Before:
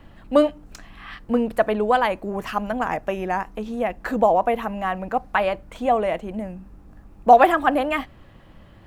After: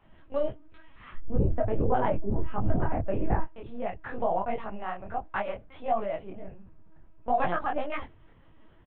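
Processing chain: octave divider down 2 oct, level -4 dB; 1.10–3.41 s: tilt EQ -4.5 dB/octave; peak limiter -7.5 dBFS, peak gain reduction 9.5 dB; distance through air 110 m; bands offset in time highs, lows 30 ms, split 220 Hz; LPC vocoder at 8 kHz pitch kept; detune thickener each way 52 cents; trim -5 dB

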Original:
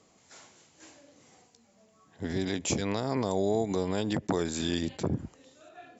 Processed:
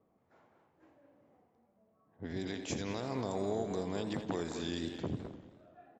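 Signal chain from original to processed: level-controlled noise filter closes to 1 kHz, open at -24 dBFS; speakerphone echo 210 ms, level -6 dB; modulated delay 86 ms, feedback 65%, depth 173 cents, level -12.5 dB; trim -8 dB

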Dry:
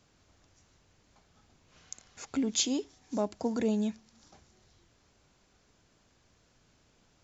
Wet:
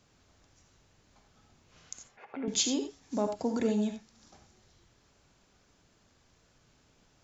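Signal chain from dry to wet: 2.07–2.48 s: cabinet simulation 270–2300 Hz, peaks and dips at 290 Hz -10 dB, 770 Hz +4 dB, 1.3 kHz -7 dB; gated-style reverb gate 110 ms rising, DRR 6.5 dB

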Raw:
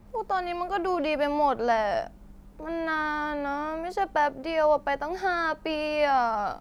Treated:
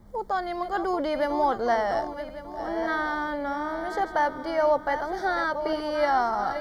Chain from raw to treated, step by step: backward echo that repeats 573 ms, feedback 58%, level -9.5 dB; Butterworth band-stop 2.6 kHz, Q 3.1

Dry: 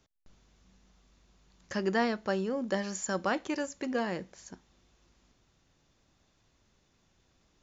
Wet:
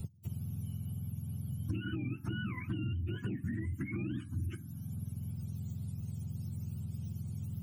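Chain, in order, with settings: spectrum inverted on a logarithmic axis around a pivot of 750 Hz; ten-band graphic EQ 125 Hz +3 dB, 250 Hz +8 dB, 500 Hz -6 dB, 1 kHz -4 dB, 2 kHz -11 dB, 4 kHz -9 dB; compression 16:1, threshold -36 dBFS, peak gain reduction 13 dB; touch-sensitive phaser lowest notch 270 Hz, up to 1.8 kHz, full sweep at -32.5 dBFS; peak limiter -38.5 dBFS, peak gain reduction 9 dB; high-order bell 700 Hz -14 dB; three bands compressed up and down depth 100%; trim +11 dB

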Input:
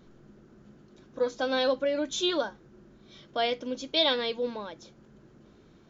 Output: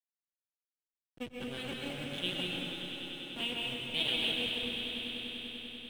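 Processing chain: cycle switcher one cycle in 2, muted; FFT filter 170 Hz 0 dB, 1.1 kHz -15 dB, 2 kHz -4 dB, 2.9 kHz +11 dB, 5.1 kHz -22 dB, 8.5 kHz -9 dB; hysteresis with a dead band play -35 dBFS; echo with a slow build-up 98 ms, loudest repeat 5, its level -13.5 dB; plate-style reverb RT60 2.2 s, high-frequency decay 0.95×, pre-delay 115 ms, DRR -1.5 dB; trim -6 dB

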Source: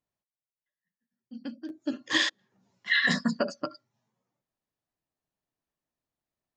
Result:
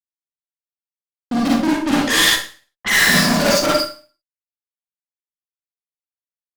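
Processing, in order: fuzz box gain 50 dB, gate -59 dBFS; 1.50–2.91 s: level-controlled noise filter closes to 640 Hz, open at -14 dBFS; Schroeder reverb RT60 0.39 s, DRR -4.5 dB; trim -5 dB

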